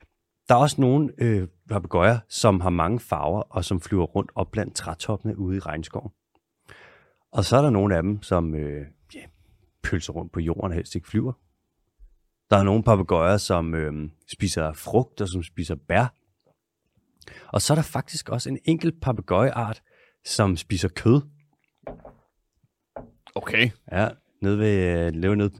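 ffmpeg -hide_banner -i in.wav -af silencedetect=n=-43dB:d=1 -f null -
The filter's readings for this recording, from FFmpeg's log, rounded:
silence_start: 16.09
silence_end: 17.22 | silence_duration: 1.12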